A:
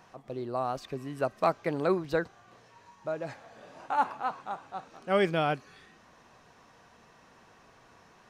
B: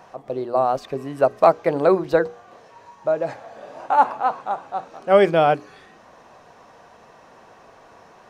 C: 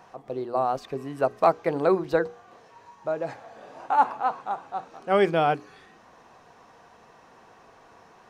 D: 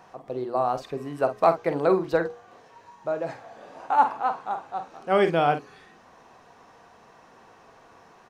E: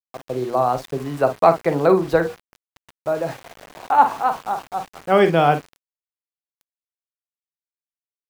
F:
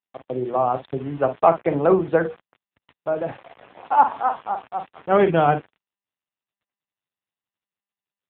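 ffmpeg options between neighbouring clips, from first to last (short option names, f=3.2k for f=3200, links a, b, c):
-af "equalizer=f=610:w=0.75:g=9,bandreject=f=60:t=h:w=6,bandreject=f=120:t=h:w=6,bandreject=f=180:t=h:w=6,bandreject=f=240:t=h:w=6,bandreject=f=300:t=h:w=6,bandreject=f=360:t=h:w=6,bandreject=f=420:t=h:w=6,bandreject=f=480:t=h:w=6,volume=4.5dB"
-af "equalizer=f=590:t=o:w=0.23:g=-6.5,volume=-4dB"
-filter_complex "[0:a]asplit=2[a][b];[b]adelay=48,volume=-10dB[c];[a][c]amix=inputs=2:normalize=0"
-filter_complex "[0:a]acrossover=split=160|1100[a][b][c];[a]acontrast=47[d];[d][b][c]amix=inputs=3:normalize=0,aeval=exprs='val(0)*gte(abs(val(0)),0.00944)':c=same,volume=5.5dB"
-af "volume=-1dB" -ar 8000 -c:a libopencore_amrnb -b:a 6700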